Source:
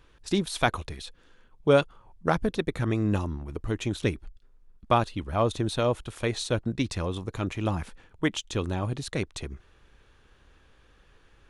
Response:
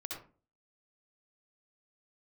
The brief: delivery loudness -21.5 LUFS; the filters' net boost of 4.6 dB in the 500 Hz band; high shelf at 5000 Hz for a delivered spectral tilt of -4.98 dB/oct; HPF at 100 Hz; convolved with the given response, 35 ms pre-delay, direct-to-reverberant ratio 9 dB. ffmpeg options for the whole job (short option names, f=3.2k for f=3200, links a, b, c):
-filter_complex "[0:a]highpass=100,equalizer=f=500:t=o:g=5.5,highshelf=f=5k:g=3.5,asplit=2[a][b];[1:a]atrim=start_sample=2205,adelay=35[c];[b][c]afir=irnorm=-1:irlink=0,volume=-8.5dB[d];[a][d]amix=inputs=2:normalize=0,volume=4dB"